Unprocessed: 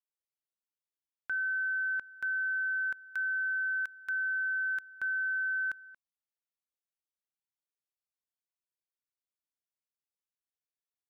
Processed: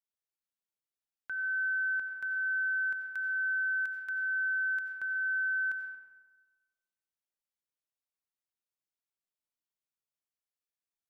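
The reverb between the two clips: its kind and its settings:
comb and all-pass reverb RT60 1.3 s, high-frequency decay 0.5×, pre-delay 50 ms, DRR 4.5 dB
level −4 dB

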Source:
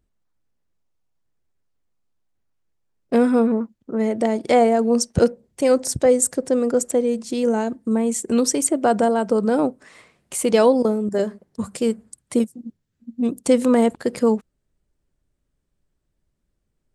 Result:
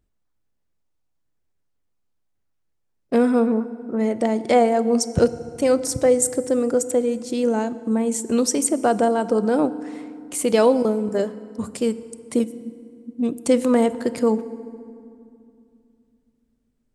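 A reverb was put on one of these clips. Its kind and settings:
feedback delay network reverb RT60 2.5 s, low-frequency decay 1.4×, high-frequency decay 0.6×, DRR 14.5 dB
level −1 dB

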